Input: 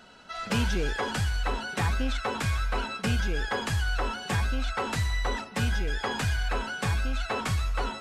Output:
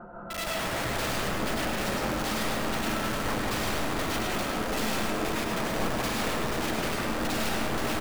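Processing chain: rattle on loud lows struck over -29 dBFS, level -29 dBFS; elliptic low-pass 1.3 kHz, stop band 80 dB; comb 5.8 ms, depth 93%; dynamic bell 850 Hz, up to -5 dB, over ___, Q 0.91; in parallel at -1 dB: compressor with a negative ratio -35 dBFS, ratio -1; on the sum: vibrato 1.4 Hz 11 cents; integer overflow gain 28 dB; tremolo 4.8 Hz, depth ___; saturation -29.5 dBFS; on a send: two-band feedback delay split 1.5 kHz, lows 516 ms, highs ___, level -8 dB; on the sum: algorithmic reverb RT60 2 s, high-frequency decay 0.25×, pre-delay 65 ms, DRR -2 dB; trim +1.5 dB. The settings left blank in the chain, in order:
-44 dBFS, 39%, 104 ms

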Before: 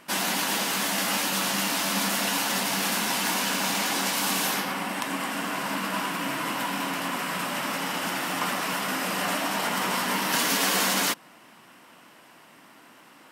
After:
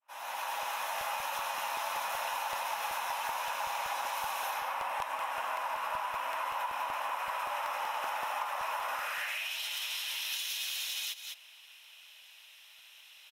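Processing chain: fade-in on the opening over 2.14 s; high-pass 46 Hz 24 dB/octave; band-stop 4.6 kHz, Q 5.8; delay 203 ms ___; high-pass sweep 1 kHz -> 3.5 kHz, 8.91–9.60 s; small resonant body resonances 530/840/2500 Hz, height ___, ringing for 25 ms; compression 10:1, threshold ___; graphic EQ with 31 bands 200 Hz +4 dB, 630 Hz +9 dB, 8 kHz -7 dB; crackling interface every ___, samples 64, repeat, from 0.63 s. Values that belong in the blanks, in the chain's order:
-15 dB, 9 dB, -33 dBFS, 0.19 s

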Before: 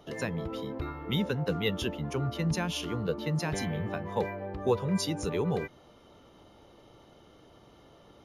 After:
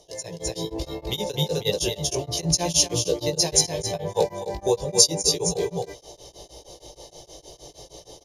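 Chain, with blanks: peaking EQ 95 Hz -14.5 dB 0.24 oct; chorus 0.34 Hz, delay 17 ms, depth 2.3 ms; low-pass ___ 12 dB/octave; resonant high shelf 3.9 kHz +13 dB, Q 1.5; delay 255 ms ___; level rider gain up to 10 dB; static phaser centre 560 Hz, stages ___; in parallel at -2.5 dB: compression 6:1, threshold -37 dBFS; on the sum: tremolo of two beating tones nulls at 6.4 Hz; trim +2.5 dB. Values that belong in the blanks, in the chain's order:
10 kHz, -5 dB, 4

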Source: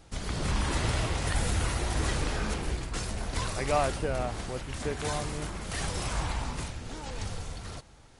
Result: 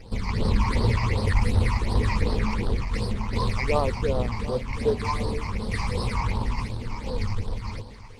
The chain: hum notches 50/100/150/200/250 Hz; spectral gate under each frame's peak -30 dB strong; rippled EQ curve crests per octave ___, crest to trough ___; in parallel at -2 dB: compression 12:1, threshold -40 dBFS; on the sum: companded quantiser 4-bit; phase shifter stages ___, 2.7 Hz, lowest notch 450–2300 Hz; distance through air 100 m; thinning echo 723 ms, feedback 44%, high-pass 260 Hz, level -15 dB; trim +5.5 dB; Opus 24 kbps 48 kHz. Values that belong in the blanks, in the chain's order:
0.91, 12 dB, 8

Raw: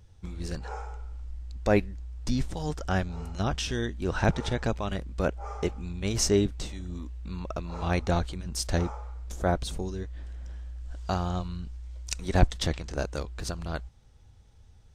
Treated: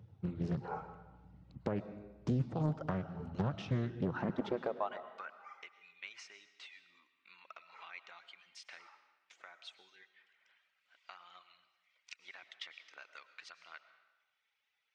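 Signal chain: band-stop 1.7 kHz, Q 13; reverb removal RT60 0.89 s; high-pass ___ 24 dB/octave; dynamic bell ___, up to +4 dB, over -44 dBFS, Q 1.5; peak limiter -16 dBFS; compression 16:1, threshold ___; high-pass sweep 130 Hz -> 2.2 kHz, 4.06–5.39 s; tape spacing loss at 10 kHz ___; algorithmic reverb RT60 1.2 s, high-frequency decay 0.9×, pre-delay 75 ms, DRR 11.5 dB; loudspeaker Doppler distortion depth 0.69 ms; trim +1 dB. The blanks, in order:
80 Hz, 1.2 kHz, -32 dBFS, 36 dB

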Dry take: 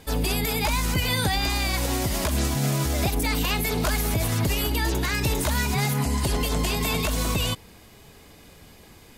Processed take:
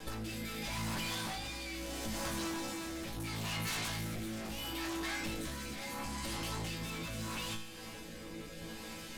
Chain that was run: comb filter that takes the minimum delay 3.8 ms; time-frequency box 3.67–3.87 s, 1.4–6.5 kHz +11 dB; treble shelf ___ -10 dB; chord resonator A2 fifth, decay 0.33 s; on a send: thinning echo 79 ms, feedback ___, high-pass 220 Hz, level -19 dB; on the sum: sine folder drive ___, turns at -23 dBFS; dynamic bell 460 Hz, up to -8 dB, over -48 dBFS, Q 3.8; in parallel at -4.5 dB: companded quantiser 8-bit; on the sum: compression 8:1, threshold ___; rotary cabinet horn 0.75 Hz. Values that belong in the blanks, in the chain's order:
12 kHz, 56%, 13 dB, -36 dBFS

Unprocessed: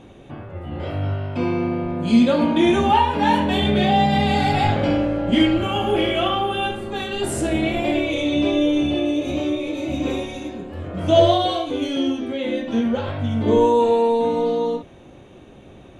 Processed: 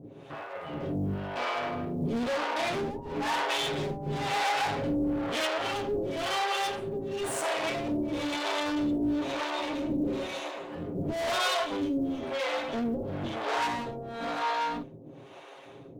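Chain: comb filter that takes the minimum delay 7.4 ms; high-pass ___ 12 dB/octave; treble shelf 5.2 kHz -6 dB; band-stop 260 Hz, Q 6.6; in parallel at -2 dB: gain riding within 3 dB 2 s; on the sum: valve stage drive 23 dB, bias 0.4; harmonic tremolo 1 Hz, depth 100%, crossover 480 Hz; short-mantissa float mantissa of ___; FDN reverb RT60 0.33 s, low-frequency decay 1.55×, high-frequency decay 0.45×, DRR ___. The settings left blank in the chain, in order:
150 Hz, 6-bit, 18 dB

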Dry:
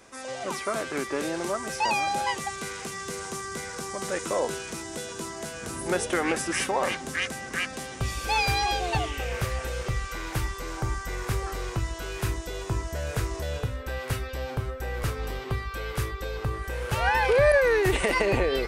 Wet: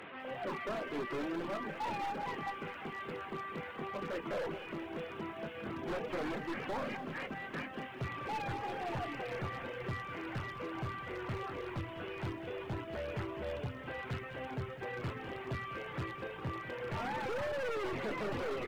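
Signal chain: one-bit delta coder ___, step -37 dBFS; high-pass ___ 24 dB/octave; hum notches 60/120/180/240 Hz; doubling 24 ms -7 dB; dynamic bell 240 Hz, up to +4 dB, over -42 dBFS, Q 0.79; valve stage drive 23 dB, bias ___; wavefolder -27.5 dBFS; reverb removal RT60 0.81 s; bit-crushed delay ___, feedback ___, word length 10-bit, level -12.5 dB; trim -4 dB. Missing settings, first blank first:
16 kbps, 92 Hz, 0.45, 201 ms, 55%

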